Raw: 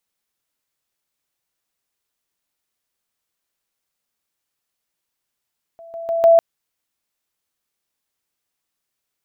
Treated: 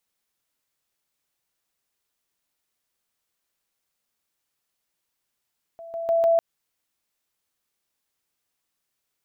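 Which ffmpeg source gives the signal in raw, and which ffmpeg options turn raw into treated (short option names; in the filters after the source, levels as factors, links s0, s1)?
-f lavfi -i "aevalsrc='pow(10,(-37.5+10*floor(t/0.15))/20)*sin(2*PI*667*t)':d=0.6:s=44100"
-af "alimiter=limit=0.168:level=0:latency=1:release=104"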